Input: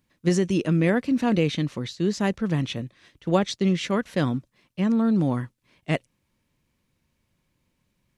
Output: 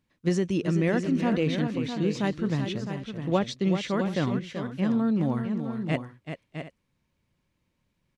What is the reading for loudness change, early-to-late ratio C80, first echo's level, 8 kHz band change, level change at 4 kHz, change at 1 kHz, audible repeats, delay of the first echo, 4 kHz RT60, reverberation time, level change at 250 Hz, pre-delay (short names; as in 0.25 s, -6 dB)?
-3.0 dB, none, -8.5 dB, -6.0 dB, -4.0 dB, -2.5 dB, 3, 0.383 s, none, none, -2.5 dB, none